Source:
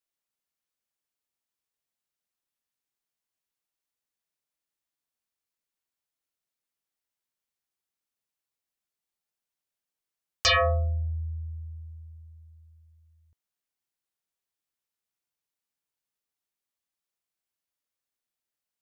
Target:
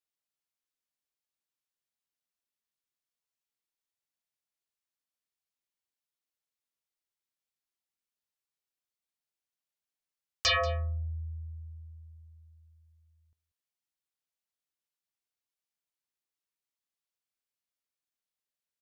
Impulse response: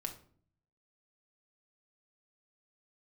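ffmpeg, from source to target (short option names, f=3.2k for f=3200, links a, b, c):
-af "equalizer=f=3.9k:t=o:w=2.1:g=3,aecho=1:1:186:0.112,volume=-6.5dB"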